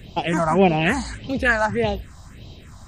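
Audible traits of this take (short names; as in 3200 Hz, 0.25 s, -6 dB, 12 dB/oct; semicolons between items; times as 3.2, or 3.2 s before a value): phasing stages 4, 1.7 Hz, lowest notch 410–1700 Hz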